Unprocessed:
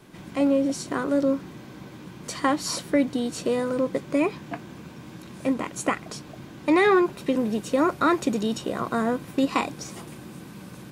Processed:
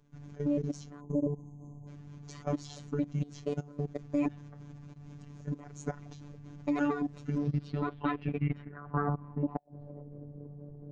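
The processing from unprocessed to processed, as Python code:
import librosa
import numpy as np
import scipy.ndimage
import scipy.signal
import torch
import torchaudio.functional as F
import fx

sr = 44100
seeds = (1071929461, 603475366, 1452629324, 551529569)

y = fx.pitch_trill(x, sr, semitones=-5.5, every_ms=115)
y = fx.riaa(y, sr, side='playback')
y = fx.spec_erase(y, sr, start_s=1.0, length_s=0.88, low_hz=1100.0, high_hz=6200.0)
y = fx.level_steps(y, sr, step_db=19)
y = fx.filter_sweep_lowpass(y, sr, from_hz=6600.0, to_hz=510.0, start_s=7.26, end_s=10.04, q=5.2)
y = fx.gate_flip(y, sr, shuts_db=-8.0, range_db=-35)
y = fx.robotise(y, sr, hz=145.0)
y = F.gain(torch.from_numpy(y), -7.5).numpy()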